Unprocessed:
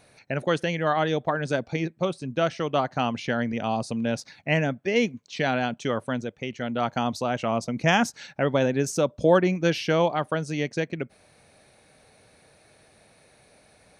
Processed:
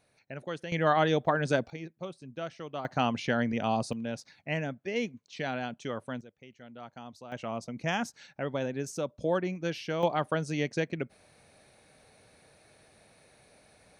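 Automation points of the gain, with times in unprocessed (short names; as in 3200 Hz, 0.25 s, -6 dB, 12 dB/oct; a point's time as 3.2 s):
-13 dB
from 0.72 s -1 dB
from 1.7 s -13.5 dB
from 2.85 s -2 dB
from 3.93 s -9 dB
from 6.21 s -19.5 dB
from 7.32 s -10 dB
from 10.03 s -3 dB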